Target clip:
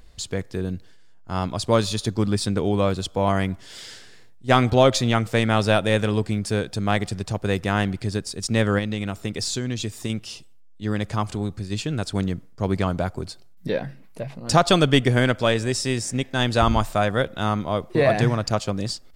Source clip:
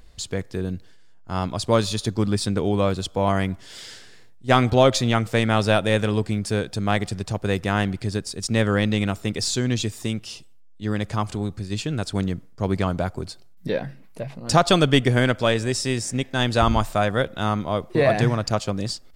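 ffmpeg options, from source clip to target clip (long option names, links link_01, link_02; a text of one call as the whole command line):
ffmpeg -i in.wav -filter_complex "[0:a]asettb=1/sr,asplit=3[link_01][link_02][link_03];[link_01]atrim=end=8.784[link_04];[link_02]atrim=start=8.78:end=10.1,asetpts=PTS-STARTPTS,afade=type=in:duration=0.004:curve=qsin,afade=type=out:start_time=1.316:duration=0.004:curve=qsin,acompressor=threshold=-23dB:ratio=6[link_05];[link_03]atrim=start=10.096[link_06];[link_04][link_05]acrossfade=duration=0.004:curve1=hsin:curve2=qsin[link_07];[link_07][link_06]acrossfade=duration=0.004:curve1=qsin:curve2=hsin" out.wav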